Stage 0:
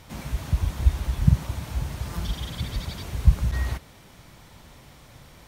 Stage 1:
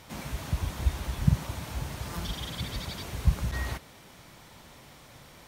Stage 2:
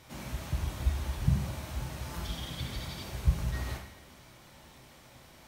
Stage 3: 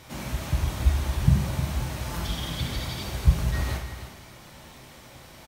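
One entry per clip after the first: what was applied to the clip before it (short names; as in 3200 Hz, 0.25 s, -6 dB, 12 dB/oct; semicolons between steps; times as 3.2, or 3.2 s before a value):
low shelf 120 Hz -9.5 dB
two-slope reverb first 0.7 s, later 2.1 s, DRR 0.5 dB; gain -6 dB
echo 0.31 s -10.5 dB; gain +7 dB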